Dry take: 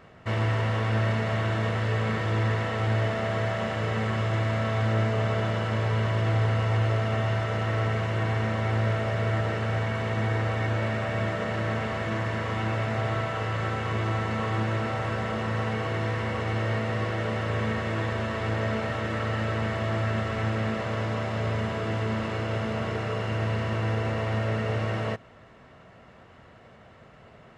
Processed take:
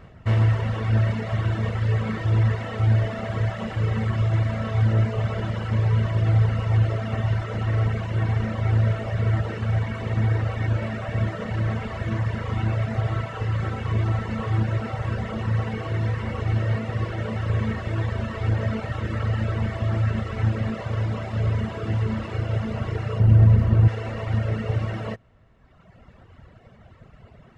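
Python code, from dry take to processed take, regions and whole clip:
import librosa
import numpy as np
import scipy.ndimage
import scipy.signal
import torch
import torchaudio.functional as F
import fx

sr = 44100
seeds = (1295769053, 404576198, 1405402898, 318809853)

y = fx.tilt_eq(x, sr, slope=-2.5, at=(23.19, 23.87), fade=0.02)
y = fx.dmg_crackle(y, sr, seeds[0], per_s=490.0, level_db=-45.0, at=(23.19, 23.87), fade=0.02)
y = fx.running_max(y, sr, window=3, at=(23.19, 23.87), fade=0.02)
y = fx.low_shelf(y, sr, hz=97.0, db=9.5)
y = fx.dereverb_blind(y, sr, rt60_s=1.6)
y = fx.low_shelf(y, sr, hz=200.0, db=7.5)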